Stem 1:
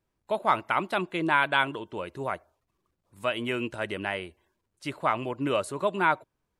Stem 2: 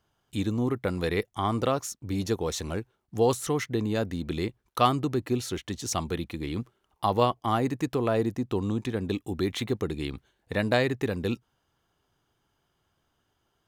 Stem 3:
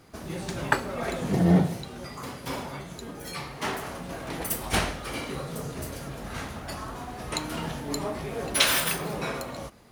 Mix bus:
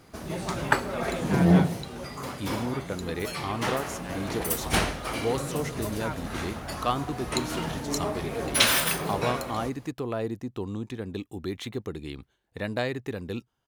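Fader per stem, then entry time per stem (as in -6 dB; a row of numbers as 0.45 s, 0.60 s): -13.0 dB, -5.0 dB, +1.0 dB; 0.00 s, 2.05 s, 0.00 s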